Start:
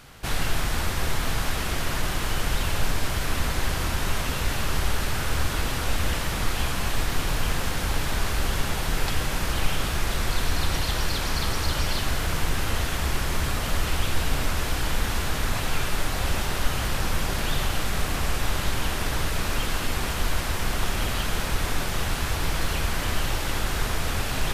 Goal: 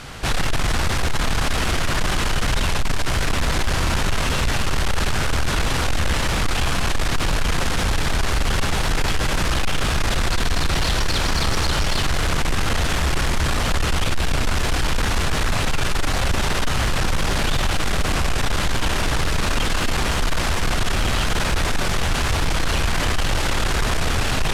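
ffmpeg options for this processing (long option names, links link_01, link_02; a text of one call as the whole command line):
ffmpeg -i in.wav -filter_complex "[0:a]lowpass=9100,asplit=2[link_01][link_02];[link_02]alimiter=level_in=2dB:limit=-24dB:level=0:latency=1,volume=-2dB,volume=0.5dB[link_03];[link_01][link_03]amix=inputs=2:normalize=0,acontrast=54,asoftclip=type=tanh:threshold=-14dB" out.wav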